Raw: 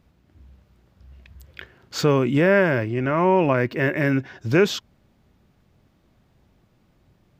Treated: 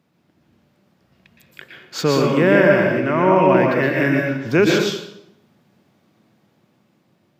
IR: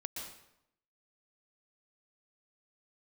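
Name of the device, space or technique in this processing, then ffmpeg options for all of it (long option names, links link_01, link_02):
far laptop microphone: -filter_complex "[1:a]atrim=start_sample=2205[link_01];[0:a][link_01]afir=irnorm=-1:irlink=0,highpass=frequency=140:width=0.5412,highpass=frequency=140:width=1.3066,dynaudnorm=framelen=520:gausssize=7:maxgain=4dB,volume=2.5dB"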